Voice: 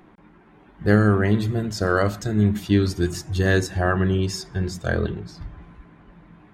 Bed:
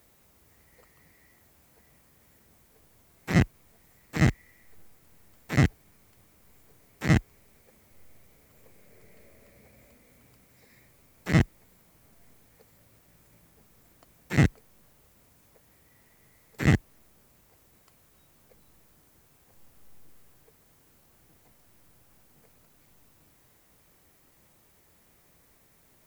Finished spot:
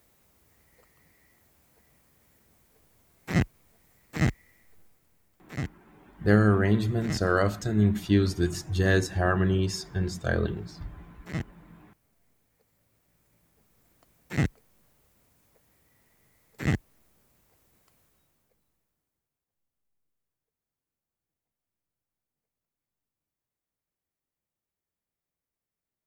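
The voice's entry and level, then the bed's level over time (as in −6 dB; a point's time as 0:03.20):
5.40 s, −3.5 dB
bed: 0:04.56 −3 dB
0:05.39 −11.5 dB
0:12.63 −11.5 dB
0:14.00 −5 dB
0:18.01 −5 dB
0:19.47 −30 dB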